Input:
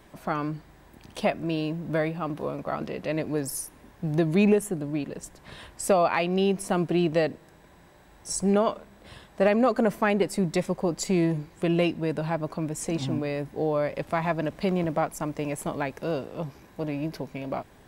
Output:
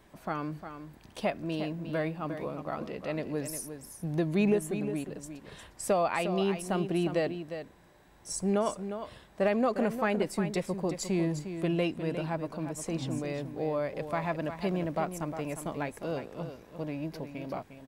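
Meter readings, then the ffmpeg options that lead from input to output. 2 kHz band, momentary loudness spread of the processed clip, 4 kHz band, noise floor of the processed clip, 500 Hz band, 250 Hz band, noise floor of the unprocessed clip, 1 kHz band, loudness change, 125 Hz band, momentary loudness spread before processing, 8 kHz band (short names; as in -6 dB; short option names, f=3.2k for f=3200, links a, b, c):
-5.0 dB, 12 LU, -5.0 dB, -58 dBFS, -5.0 dB, -5.0 dB, -54 dBFS, -5.0 dB, -5.5 dB, -5.0 dB, 12 LU, -5.0 dB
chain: -af "aecho=1:1:355:0.335,volume=-5.5dB"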